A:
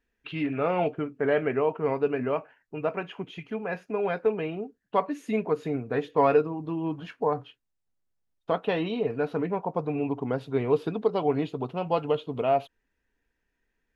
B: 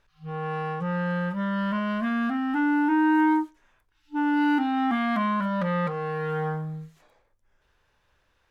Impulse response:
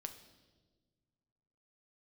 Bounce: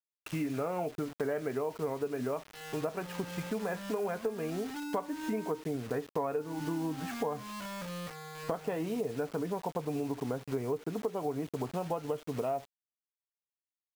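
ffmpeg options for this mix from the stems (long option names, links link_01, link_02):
-filter_complex "[0:a]lowpass=1800,volume=2.5dB[link_01];[1:a]adelay=2200,volume=-15.5dB[link_02];[link_01][link_02]amix=inputs=2:normalize=0,acrusher=bits=6:mix=0:aa=0.000001,acompressor=threshold=-31dB:ratio=6"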